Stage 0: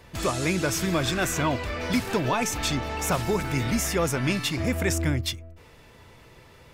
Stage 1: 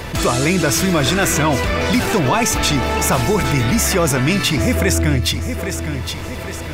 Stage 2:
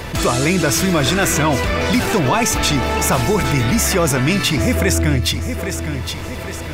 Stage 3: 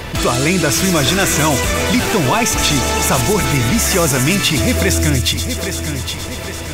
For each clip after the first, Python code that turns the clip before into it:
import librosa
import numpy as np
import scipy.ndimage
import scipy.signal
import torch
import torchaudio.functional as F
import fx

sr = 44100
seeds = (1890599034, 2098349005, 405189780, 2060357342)

y1 = fx.echo_feedback(x, sr, ms=813, feedback_pct=30, wet_db=-14.5)
y1 = fx.env_flatten(y1, sr, amount_pct=50)
y1 = y1 * librosa.db_to_amplitude(7.0)
y2 = y1
y3 = fx.peak_eq(y2, sr, hz=3100.0, db=2.5, octaves=0.77)
y3 = fx.echo_wet_highpass(y3, sr, ms=119, feedback_pct=81, hz=5000.0, wet_db=-4.0)
y3 = y3 * librosa.db_to_amplitude(1.0)